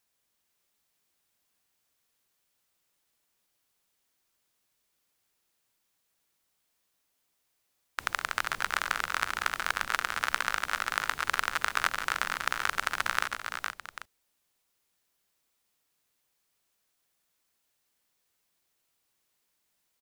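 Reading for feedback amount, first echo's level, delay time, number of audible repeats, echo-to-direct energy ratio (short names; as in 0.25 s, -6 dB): no steady repeat, -13.5 dB, 0.141 s, 3, -4.0 dB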